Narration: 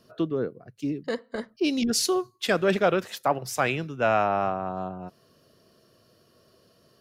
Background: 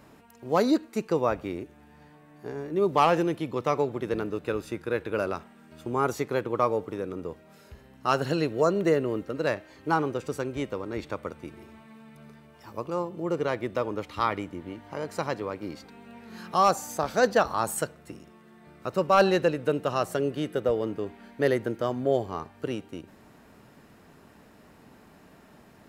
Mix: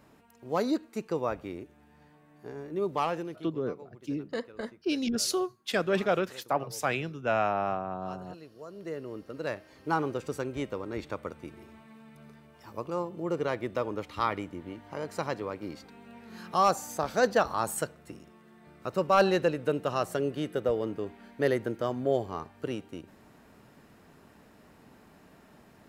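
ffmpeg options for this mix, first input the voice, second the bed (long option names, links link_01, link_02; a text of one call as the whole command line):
ffmpeg -i stem1.wav -i stem2.wav -filter_complex "[0:a]adelay=3250,volume=-4.5dB[link_01];[1:a]volume=14.5dB,afade=type=out:start_time=2.76:duration=0.86:silence=0.141254,afade=type=in:start_time=8.67:duration=1.43:silence=0.1[link_02];[link_01][link_02]amix=inputs=2:normalize=0" out.wav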